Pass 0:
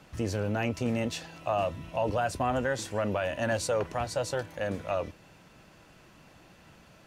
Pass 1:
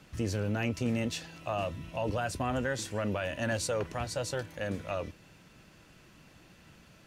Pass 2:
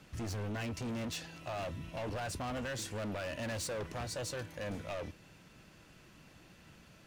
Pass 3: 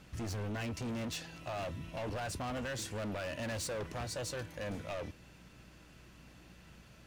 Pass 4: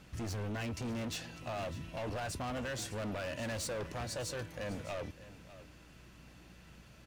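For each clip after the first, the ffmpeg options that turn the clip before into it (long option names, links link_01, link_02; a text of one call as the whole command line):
ffmpeg -i in.wav -af "equalizer=frequency=770:width_type=o:width=1.5:gain=-6" out.wav
ffmpeg -i in.wav -af "asoftclip=type=hard:threshold=-34.5dB,volume=-1.5dB" out.wav
ffmpeg -i in.wav -af "aeval=exprs='val(0)+0.001*(sin(2*PI*60*n/s)+sin(2*PI*2*60*n/s)/2+sin(2*PI*3*60*n/s)/3+sin(2*PI*4*60*n/s)/4+sin(2*PI*5*60*n/s)/5)':channel_layout=same" out.wav
ffmpeg -i in.wav -af "aecho=1:1:601:0.158" out.wav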